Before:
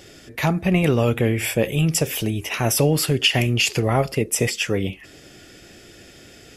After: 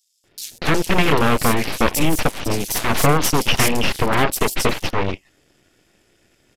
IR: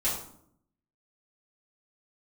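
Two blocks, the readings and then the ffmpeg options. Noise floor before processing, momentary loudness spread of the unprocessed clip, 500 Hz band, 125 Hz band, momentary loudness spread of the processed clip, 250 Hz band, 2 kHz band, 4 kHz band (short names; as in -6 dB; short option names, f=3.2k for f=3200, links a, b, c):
-46 dBFS, 7 LU, +0.5 dB, -3.0 dB, 8 LU, +0.5 dB, +3.5 dB, +0.5 dB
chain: -filter_complex "[0:a]asplit=2[a][b];[b]acrusher=bits=5:dc=4:mix=0:aa=0.000001,volume=-8.5dB[c];[a][c]amix=inputs=2:normalize=0,aeval=exprs='0.75*(cos(1*acos(clip(val(0)/0.75,-1,1)))-cos(1*PI/2))+0.168*(cos(3*acos(clip(val(0)/0.75,-1,1)))-cos(3*PI/2))+0.015*(cos(7*acos(clip(val(0)/0.75,-1,1)))-cos(7*PI/2))+0.188*(cos(8*acos(clip(val(0)/0.75,-1,1)))-cos(8*PI/2))':c=same,aresample=32000,aresample=44100,acrossover=split=4500[d][e];[d]adelay=240[f];[f][e]amix=inputs=2:normalize=0"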